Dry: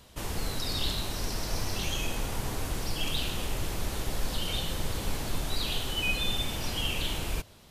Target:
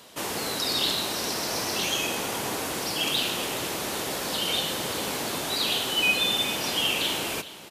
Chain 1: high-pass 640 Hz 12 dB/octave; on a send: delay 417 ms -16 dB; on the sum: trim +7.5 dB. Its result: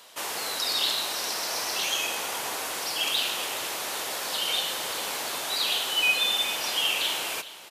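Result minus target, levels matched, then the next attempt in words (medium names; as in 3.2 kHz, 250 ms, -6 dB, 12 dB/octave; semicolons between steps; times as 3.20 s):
250 Hz band -11.5 dB
high-pass 260 Hz 12 dB/octave; on a send: delay 417 ms -16 dB; on the sum: trim +7.5 dB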